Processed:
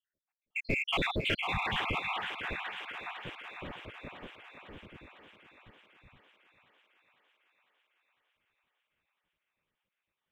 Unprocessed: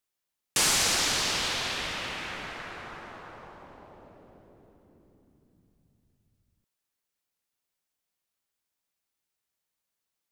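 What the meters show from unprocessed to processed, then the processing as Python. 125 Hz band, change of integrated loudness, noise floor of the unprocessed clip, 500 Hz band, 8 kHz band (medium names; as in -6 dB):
+3.0 dB, -7.5 dB, -85 dBFS, -1.0 dB, -30.5 dB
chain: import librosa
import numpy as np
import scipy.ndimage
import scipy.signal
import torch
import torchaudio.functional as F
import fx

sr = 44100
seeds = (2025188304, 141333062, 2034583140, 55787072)

p1 = fx.spec_dropout(x, sr, seeds[0], share_pct=78)
p2 = scipy.signal.sosfilt(scipy.signal.butter(12, 3400.0, 'lowpass', fs=sr, output='sos'), p1)
p3 = fx.spec_repair(p2, sr, seeds[1], start_s=1.46, length_s=0.32, low_hz=220.0, high_hz=1200.0, source='after')
p4 = fx.low_shelf(p3, sr, hz=440.0, db=8.5)
p5 = np.clip(p4, -10.0 ** (-33.0 / 20.0), 10.0 ** (-33.0 / 20.0))
p6 = p4 + F.gain(torch.from_numpy(p5), -4.5).numpy()
p7 = fx.quant_float(p6, sr, bits=6)
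y = p7 + fx.echo_thinned(p7, sr, ms=502, feedback_pct=69, hz=330.0, wet_db=-8, dry=0)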